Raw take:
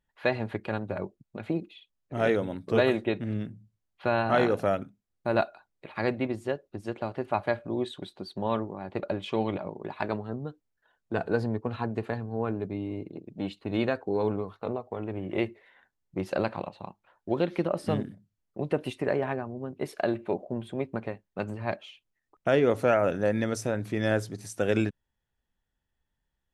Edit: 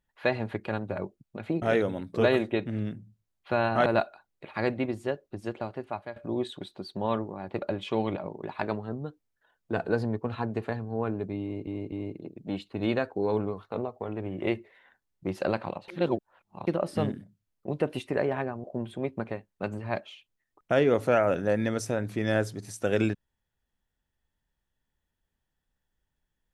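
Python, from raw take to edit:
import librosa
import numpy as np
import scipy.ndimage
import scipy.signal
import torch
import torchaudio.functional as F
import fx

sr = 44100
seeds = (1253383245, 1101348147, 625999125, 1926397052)

y = fx.edit(x, sr, fx.cut(start_s=1.62, length_s=0.54),
    fx.cut(start_s=4.4, length_s=0.87),
    fx.fade_out_to(start_s=6.9, length_s=0.67, floor_db=-15.5),
    fx.repeat(start_s=12.83, length_s=0.25, count=3),
    fx.reverse_span(start_s=16.79, length_s=0.79),
    fx.cut(start_s=19.55, length_s=0.85), tone=tone)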